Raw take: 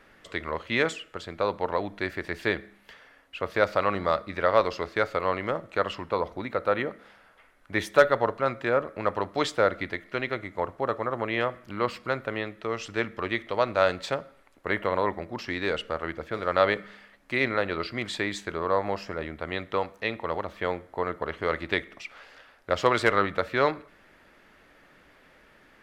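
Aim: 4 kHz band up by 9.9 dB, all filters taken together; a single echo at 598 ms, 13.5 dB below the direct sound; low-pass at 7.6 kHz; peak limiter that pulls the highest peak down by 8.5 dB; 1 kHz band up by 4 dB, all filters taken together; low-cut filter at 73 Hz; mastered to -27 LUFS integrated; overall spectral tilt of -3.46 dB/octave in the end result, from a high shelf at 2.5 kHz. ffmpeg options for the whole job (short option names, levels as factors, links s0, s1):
-af "highpass=73,lowpass=7600,equalizer=f=1000:t=o:g=3,highshelf=f=2500:g=8,equalizer=f=4000:t=o:g=5.5,alimiter=limit=0.335:level=0:latency=1,aecho=1:1:598:0.211,volume=0.944"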